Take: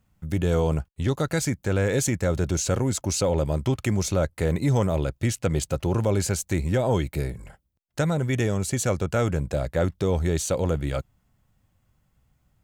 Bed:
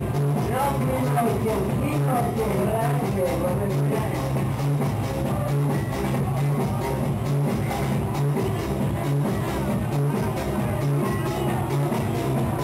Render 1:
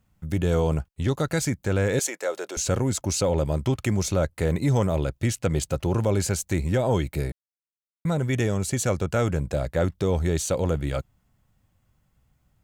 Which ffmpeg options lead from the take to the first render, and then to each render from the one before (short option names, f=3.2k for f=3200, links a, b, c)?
-filter_complex "[0:a]asettb=1/sr,asplit=3[a][b][c];[a]atrim=end=1.994[d];[b]atrim=start=1.99:end=2.57,asetpts=PTS-STARTPTS,afade=t=in:d=0.004:c=qsin,afade=t=out:st=0.576:d=0.004:c=qsin,highpass=f=420:w=0.5412,highpass=f=420:w=1.3066[e];[c]atrim=start=2.566[f];[d][e]acrossfade=d=0.004:c1=hsin:c2=qsin[g];[g][f]acrossfade=d=0.004:c1=qsin:c2=hsin,asplit=3[h][i][j];[h]atrim=end=7.32,asetpts=PTS-STARTPTS,afade=t=out:st=7.316:d=0.004:c=hsin[k];[i]atrim=start=7.32:end=8.05,asetpts=PTS-STARTPTS,volume=0[l];[j]atrim=start=8.05,asetpts=PTS-STARTPTS,afade=t=in:d=0.004:c=hsin[m];[k][l][m]concat=n=3:v=0:a=1"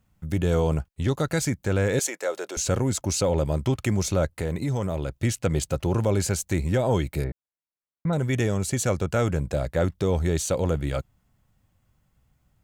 -filter_complex "[0:a]asettb=1/sr,asplit=3[a][b][c];[a]atrim=end=4.354[d];[b]atrim=start=4.35:end=5.12,asetpts=PTS-STARTPTS,afade=t=in:d=0.004:c=qsin,afade=t=out:st=0.766:d=0.004:c=qsin,acompressor=threshold=-24dB:ratio=3:attack=3.2:release=140:knee=1:detection=peak[e];[c]atrim=start=5.116[f];[d][e]acrossfade=d=0.004:c1=hsin:c2=qsin[g];[g][f]acrossfade=d=0.004:c1=qsin:c2=hsin,asettb=1/sr,asplit=3[h][i][j];[h]atrim=end=7.244[k];[i]atrim=start=7.24:end=8.13,asetpts=PTS-STARTPTS,afade=t=in:d=0.004:c=qsin,afade=t=out:st=0.886:d=0.004:c=qsin,lowpass=1.8k[l];[j]atrim=start=8.126[m];[k][l]acrossfade=d=0.004:c1=hsin:c2=qsin[n];[n][m]acrossfade=d=0.004:c1=qsin:c2=hsin"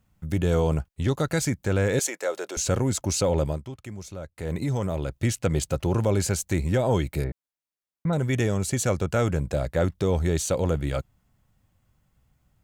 -filter_complex "[0:a]asplit=3[a][b][c];[a]atrim=end=3.63,asetpts=PTS-STARTPTS,afade=t=out:st=3.46:d=0.17:silence=0.199526[d];[b]atrim=start=3.63:end=4.35,asetpts=PTS-STARTPTS,volume=-14dB[e];[c]atrim=start=4.35,asetpts=PTS-STARTPTS,afade=t=in:d=0.17:silence=0.199526[f];[d][e][f]concat=n=3:v=0:a=1"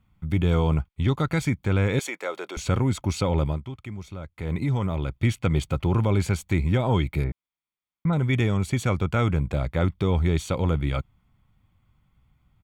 -af "highshelf=f=4.3k:t=q:w=1.5:g=-9,aecho=1:1:0.9:0.44"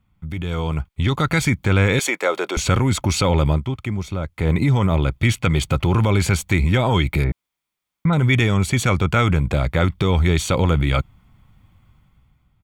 -filter_complex "[0:a]acrossover=split=1200[a][b];[a]alimiter=limit=-21.5dB:level=0:latency=1[c];[c][b]amix=inputs=2:normalize=0,dynaudnorm=f=240:g=7:m=11.5dB"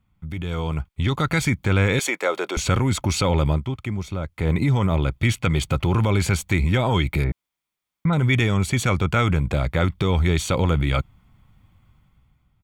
-af "volume=-2.5dB"